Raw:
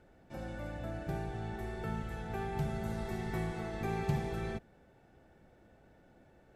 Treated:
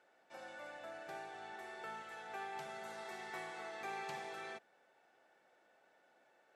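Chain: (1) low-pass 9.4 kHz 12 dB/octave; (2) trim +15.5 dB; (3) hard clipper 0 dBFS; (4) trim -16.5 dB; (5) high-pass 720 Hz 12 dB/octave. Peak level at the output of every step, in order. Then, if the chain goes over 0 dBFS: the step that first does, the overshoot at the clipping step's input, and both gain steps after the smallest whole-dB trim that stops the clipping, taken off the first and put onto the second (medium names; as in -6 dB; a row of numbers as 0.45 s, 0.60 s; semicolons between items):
-20.5 dBFS, -5.0 dBFS, -5.0 dBFS, -21.5 dBFS, -32.0 dBFS; nothing clips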